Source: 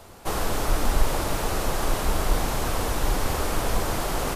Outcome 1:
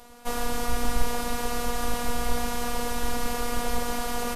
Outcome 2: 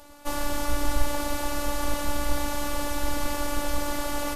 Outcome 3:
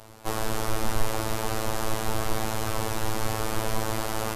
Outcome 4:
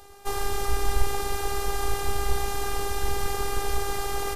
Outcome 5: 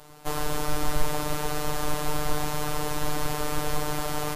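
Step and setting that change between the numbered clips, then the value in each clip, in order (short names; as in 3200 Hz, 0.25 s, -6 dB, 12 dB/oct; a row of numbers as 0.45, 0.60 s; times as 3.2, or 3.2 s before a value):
robotiser, frequency: 240, 290, 110, 400, 150 Hz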